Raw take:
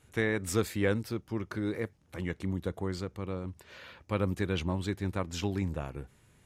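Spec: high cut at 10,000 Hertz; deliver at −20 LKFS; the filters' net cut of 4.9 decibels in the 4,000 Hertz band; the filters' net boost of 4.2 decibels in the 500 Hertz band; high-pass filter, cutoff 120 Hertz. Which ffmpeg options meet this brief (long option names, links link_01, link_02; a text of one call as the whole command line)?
ffmpeg -i in.wav -af "highpass=120,lowpass=10000,equalizer=frequency=500:width_type=o:gain=5,equalizer=frequency=4000:width_type=o:gain=-6.5,volume=12.5dB" out.wav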